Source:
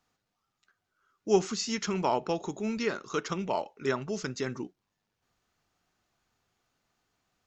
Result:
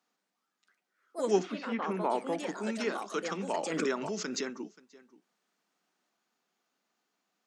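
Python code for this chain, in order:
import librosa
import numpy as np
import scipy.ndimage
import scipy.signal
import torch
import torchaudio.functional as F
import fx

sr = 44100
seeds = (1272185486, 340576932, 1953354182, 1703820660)

y = fx.lowpass(x, sr, hz=fx.line((1.42, 3300.0), (2.47, 1600.0)), slope=24, at=(1.42, 2.47), fade=0.02)
y = y + 10.0 ** (-20.5 / 20.0) * np.pad(y, (int(530 * sr / 1000.0), 0))[:len(y)]
y = fx.echo_pitch(y, sr, ms=173, semitones=4, count=2, db_per_echo=-6.0)
y = scipy.signal.sosfilt(scipy.signal.butter(8, 180.0, 'highpass', fs=sr, output='sos'), y)
y = fx.pre_swell(y, sr, db_per_s=32.0, at=(3.56, 4.53))
y = F.gain(torch.from_numpy(y), -3.0).numpy()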